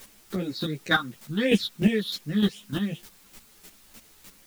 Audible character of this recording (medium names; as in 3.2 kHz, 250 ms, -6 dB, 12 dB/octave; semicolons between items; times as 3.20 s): phasing stages 6, 2.8 Hz, lowest notch 580–1200 Hz; a quantiser's noise floor 10-bit, dither triangular; chopped level 3.3 Hz, depth 65%, duty 15%; a shimmering, thickened sound